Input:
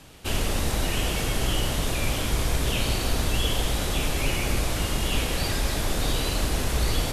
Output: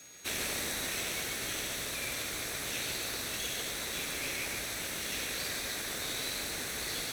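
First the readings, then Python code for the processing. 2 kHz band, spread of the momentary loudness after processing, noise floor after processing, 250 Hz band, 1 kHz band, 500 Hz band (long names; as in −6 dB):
−4.5 dB, 2 LU, −38 dBFS, −14.5 dB, −11.5 dB, −11.5 dB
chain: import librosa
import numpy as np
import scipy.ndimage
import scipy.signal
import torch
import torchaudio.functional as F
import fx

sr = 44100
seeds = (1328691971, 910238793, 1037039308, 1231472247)

p1 = fx.lower_of_two(x, sr, delay_ms=0.51)
p2 = p1 + fx.echo_single(p1, sr, ms=144, db=-6.0, dry=0)
p3 = p2 + 10.0 ** (-51.0 / 20.0) * np.sin(2.0 * np.pi * 6600.0 * np.arange(len(p2)) / sr)
p4 = fx.highpass(p3, sr, hz=800.0, slope=6)
p5 = fx.rider(p4, sr, range_db=10, speed_s=2.0)
y = p5 * librosa.db_to_amplitude(-4.5)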